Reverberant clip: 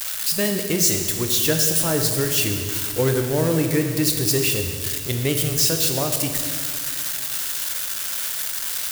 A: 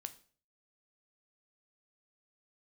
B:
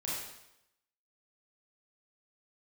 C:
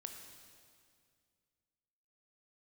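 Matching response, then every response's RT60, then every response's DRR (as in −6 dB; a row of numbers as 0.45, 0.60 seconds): C; 0.45, 0.85, 2.2 seconds; 9.5, −7.5, 4.0 decibels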